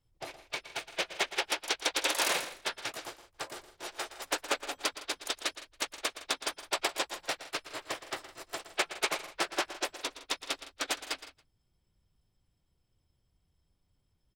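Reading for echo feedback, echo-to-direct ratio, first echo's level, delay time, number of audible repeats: no steady repeat, -12.0 dB, -13.5 dB, 0.117 s, 3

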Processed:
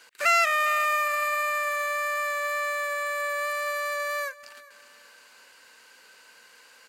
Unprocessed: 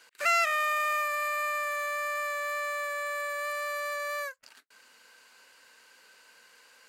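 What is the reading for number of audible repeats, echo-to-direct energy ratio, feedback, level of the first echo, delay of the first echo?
2, -19.5 dB, 36%, -20.0 dB, 0.404 s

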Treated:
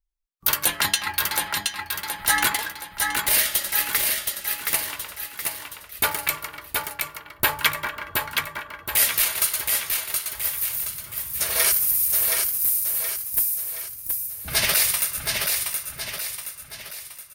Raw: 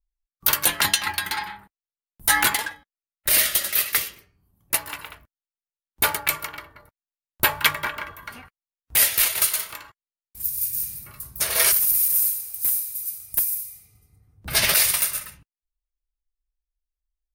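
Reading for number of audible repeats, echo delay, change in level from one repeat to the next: 4, 0.722 s, -6.5 dB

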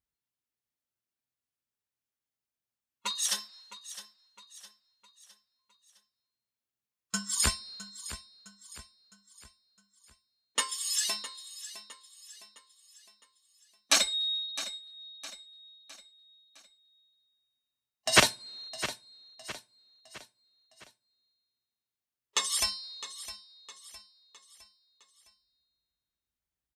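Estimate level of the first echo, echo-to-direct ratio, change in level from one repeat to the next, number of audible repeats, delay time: -14.0 dB, -13.0 dB, -7.0 dB, 4, 0.66 s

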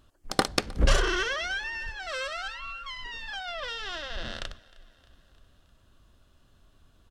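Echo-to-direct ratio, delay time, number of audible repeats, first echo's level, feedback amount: -21.0 dB, 0.31 s, 3, -23.0 dB, 60%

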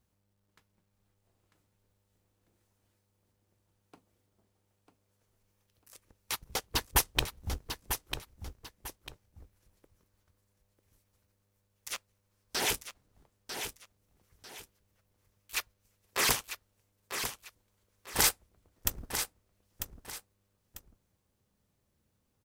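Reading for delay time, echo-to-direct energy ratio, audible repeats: 0.946 s, -7.5 dB, 2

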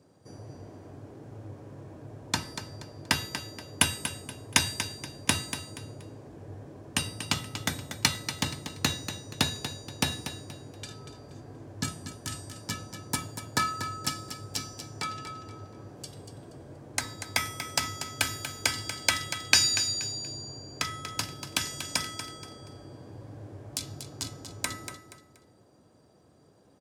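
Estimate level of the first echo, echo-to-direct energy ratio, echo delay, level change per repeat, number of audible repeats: -10.0 dB, -9.5 dB, 0.238 s, -10.0 dB, 3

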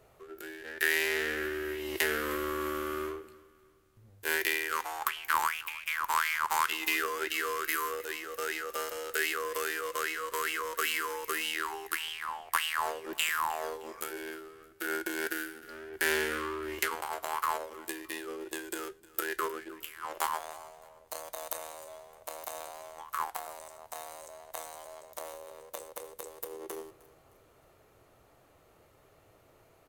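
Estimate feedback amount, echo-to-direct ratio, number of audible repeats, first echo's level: 40%, -20.5 dB, 2, -21.0 dB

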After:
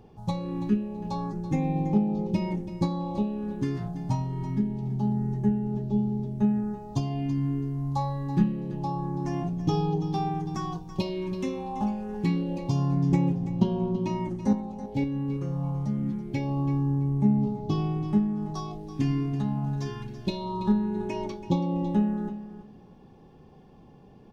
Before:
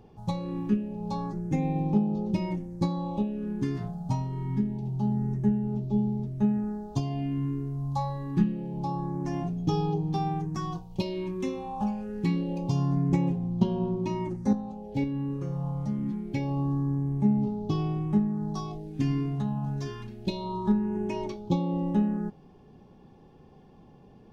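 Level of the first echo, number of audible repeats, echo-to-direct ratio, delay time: -13.0 dB, 2, -13.0 dB, 0.331 s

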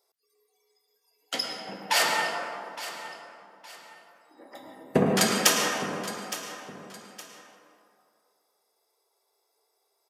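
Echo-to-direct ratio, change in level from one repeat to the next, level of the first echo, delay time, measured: -13.5 dB, -9.5 dB, -14.0 dB, 0.865 s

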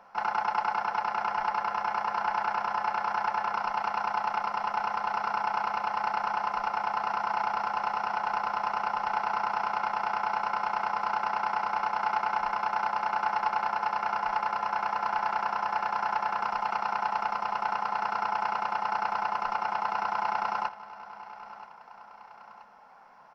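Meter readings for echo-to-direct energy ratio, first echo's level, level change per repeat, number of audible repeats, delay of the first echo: -15.5 dB, -16.5 dB, -5.0 dB, 2, 0.979 s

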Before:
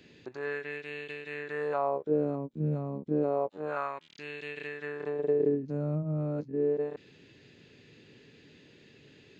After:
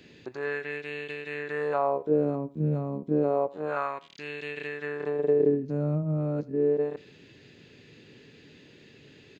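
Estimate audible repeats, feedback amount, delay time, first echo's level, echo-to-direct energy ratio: 2, 31%, 82 ms, -21.0 dB, -20.5 dB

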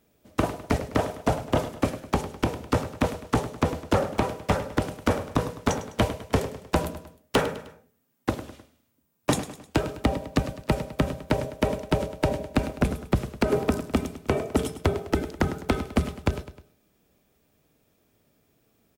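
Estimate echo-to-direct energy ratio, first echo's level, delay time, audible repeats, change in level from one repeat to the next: -12.5 dB, -13.5 dB, 0.103 s, 3, -6.5 dB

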